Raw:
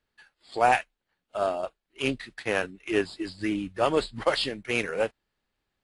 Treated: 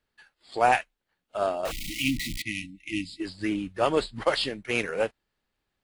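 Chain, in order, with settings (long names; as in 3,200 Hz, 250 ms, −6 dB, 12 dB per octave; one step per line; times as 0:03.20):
0:01.65–0:02.42: converter with a step at zero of −26.5 dBFS
0:01.71–0:03.20: time-frequency box erased 340–1,900 Hz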